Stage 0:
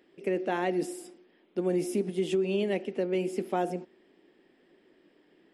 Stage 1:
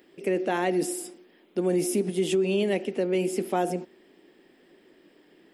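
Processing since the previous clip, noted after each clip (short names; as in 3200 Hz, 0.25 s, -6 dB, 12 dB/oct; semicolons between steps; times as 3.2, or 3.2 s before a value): high shelf 7000 Hz +10 dB; in parallel at -2 dB: limiter -25 dBFS, peak gain reduction 8 dB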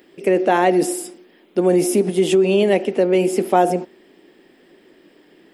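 dynamic EQ 760 Hz, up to +6 dB, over -38 dBFS, Q 0.73; gain +6.5 dB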